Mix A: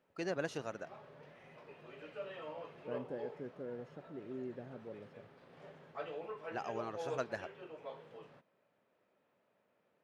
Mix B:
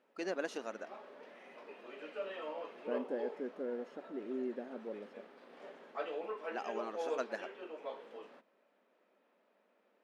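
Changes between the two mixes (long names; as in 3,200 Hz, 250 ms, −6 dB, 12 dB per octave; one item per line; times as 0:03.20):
second voice +5.0 dB
background +3.5 dB
master: add linear-phase brick-wall high-pass 190 Hz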